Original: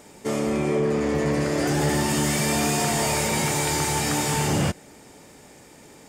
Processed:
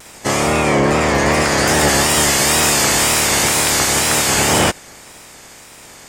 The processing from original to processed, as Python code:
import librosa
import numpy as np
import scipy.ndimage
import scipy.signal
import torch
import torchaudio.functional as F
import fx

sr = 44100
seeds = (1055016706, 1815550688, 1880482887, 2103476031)

y = fx.spec_clip(x, sr, under_db=16)
y = fx.wow_flutter(y, sr, seeds[0], rate_hz=2.1, depth_cents=99.0)
y = y * librosa.db_to_amplitude(8.5)